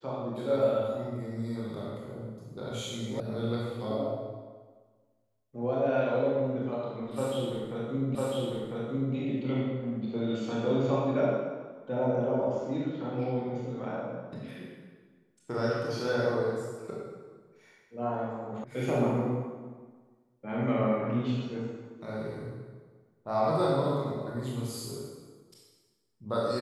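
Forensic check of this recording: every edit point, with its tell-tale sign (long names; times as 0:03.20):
0:03.20: cut off before it has died away
0:08.15: the same again, the last 1 s
0:18.64: cut off before it has died away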